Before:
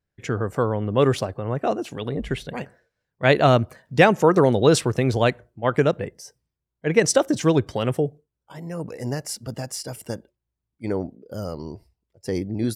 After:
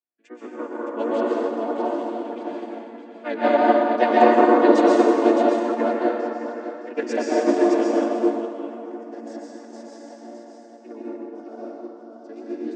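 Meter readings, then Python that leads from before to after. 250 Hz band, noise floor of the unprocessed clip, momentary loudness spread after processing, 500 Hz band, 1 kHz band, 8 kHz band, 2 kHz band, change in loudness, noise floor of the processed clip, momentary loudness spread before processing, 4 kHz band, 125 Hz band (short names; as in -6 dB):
+3.0 dB, -83 dBFS, 22 LU, +1.0 dB, +4.5 dB, under -10 dB, -3.0 dB, +2.0 dB, -44 dBFS, 17 LU, -8.0 dB, under -25 dB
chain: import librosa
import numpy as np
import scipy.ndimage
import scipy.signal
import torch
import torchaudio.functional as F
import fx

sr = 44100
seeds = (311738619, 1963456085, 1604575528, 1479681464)

p1 = fx.chord_vocoder(x, sr, chord='major triad', root=58)
p2 = scipy.signal.sosfilt(scipy.signal.butter(2, 350.0, 'highpass', fs=sr, output='sos'), p1)
p3 = fx.vibrato(p2, sr, rate_hz=3.8, depth_cents=87.0)
p4 = p3 + fx.echo_multitap(p3, sr, ms=(97, 245, 615), db=(-17.0, -11.0, -6.0), dry=0)
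p5 = fx.rev_plate(p4, sr, seeds[0], rt60_s=2.9, hf_ratio=0.55, predelay_ms=110, drr_db=-6.0)
p6 = fx.upward_expand(p5, sr, threshold_db=-28.0, expansion=1.5)
y = F.gain(torch.from_numpy(p6), -1.5).numpy()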